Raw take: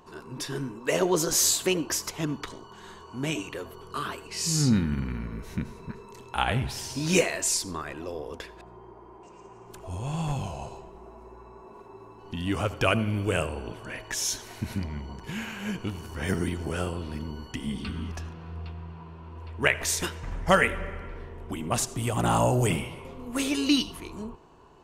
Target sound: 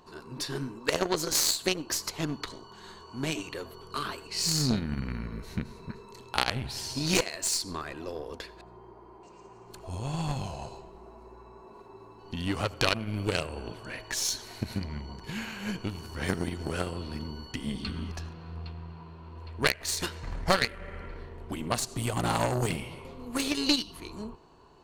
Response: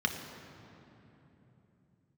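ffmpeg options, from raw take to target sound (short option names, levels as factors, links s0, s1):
-af "aeval=exprs='0.501*(cos(1*acos(clip(val(0)/0.501,-1,1)))-cos(1*PI/2))+0.178*(cos(6*acos(clip(val(0)/0.501,-1,1)))-cos(6*PI/2))+0.0501*(cos(7*acos(clip(val(0)/0.501,-1,1)))-cos(7*PI/2))+0.112*(cos(8*acos(clip(val(0)/0.501,-1,1)))-cos(8*PI/2))':c=same,acompressor=threshold=0.0178:ratio=2.5,equalizer=f=4300:w=6.5:g=11.5,volume=2.51"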